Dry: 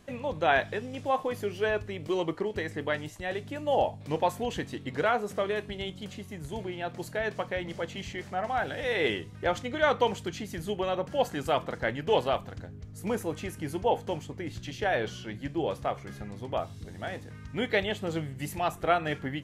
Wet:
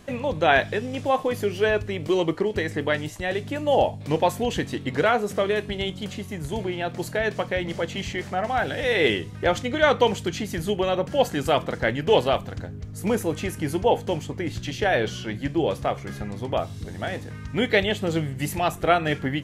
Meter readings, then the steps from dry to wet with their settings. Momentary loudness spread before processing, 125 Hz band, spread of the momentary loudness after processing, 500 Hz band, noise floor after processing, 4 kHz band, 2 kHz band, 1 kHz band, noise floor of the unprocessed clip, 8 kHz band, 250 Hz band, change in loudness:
11 LU, +8.0 dB, 9 LU, +6.5 dB, −38 dBFS, +7.5 dB, +6.5 dB, +5.0 dB, −46 dBFS, +8.0 dB, +7.5 dB, +6.5 dB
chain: dynamic equaliser 1,000 Hz, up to −4 dB, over −39 dBFS, Q 0.92
level +8 dB

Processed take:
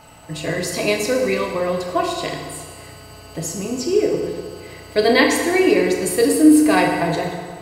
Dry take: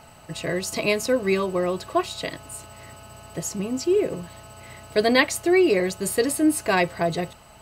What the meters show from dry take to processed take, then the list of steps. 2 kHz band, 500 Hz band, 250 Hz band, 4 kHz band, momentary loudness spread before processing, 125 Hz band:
+4.0 dB, +4.5 dB, +7.0 dB, +4.0 dB, 18 LU, +3.5 dB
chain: feedback delay network reverb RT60 1.7 s, low-frequency decay 0.85×, high-frequency decay 0.75×, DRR 0 dB
level +1.5 dB

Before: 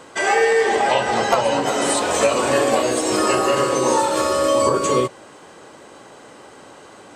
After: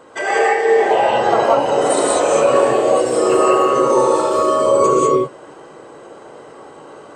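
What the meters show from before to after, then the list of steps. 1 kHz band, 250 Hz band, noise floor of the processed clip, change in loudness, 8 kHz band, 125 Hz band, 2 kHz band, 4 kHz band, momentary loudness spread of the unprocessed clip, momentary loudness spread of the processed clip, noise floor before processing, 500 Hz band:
+4.0 dB, +2.5 dB, −40 dBFS, +3.5 dB, −2.0 dB, −0.5 dB, −0.5 dB, −3.5 dB, 3 LU, 3 LU, −44 dBFS, +5.0 dB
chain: spectral envelope exaggerated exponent 1.5
reverb whose tail is shaped and stops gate 220 ms rising, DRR −5 dB
level −2 dB

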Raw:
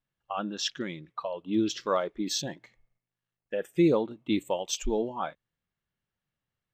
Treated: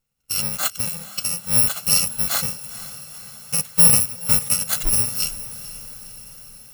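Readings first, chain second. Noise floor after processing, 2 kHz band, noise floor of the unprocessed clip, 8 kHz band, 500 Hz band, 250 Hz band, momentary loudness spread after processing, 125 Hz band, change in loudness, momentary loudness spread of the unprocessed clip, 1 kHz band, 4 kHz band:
−45 dBFS, +9.5 dB, below −85 dBFS, +20.5 dB, −9.0 dB, −5.5 dB, 22 LU, +8.5 dB, +12.5 dB, 13 LU, −0.5 dB, +10.0 dB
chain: samples in bit-reversed order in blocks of 128 samples
feedback delay with all-pass diffusion 477 ms, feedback 62%, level −15 dB
level +9 dB

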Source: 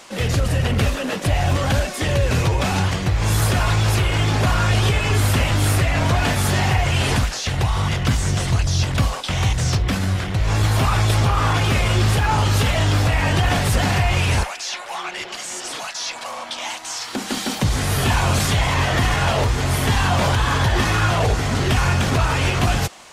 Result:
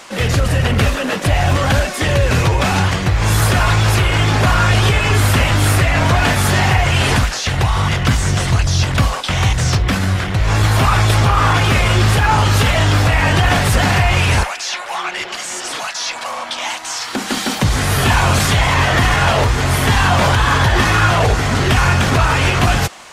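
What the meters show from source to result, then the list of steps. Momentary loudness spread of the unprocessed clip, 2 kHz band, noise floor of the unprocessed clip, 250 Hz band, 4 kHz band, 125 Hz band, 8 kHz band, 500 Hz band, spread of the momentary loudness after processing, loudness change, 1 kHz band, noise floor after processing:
9 LU, +7.0 dB, −32 dBFS, +4.0 dB, +5.0 dB, +4.0 dB, +4.0 dB, +4.5 dB, 9 LU, +5.0 dB, +6.0 dB, −27 dBFS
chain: parametric band 1,500 Hz +3.5 dB 1.6 octaves
level +4 dB

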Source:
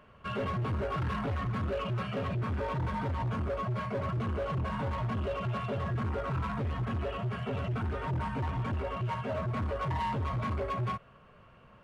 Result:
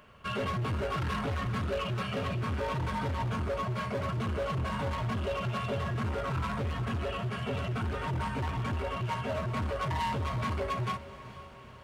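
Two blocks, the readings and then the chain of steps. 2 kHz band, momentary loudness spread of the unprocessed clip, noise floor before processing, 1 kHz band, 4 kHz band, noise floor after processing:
+3.0 dB, 2 LU, −57 dBFS, +1.0 dB, +6.0 dB, −49 dBFS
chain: high-shelf EQ 3,100 Hz +11 dB
feedback delay with all-pass diffusion 467 ms, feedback 59%, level −14.5 dB

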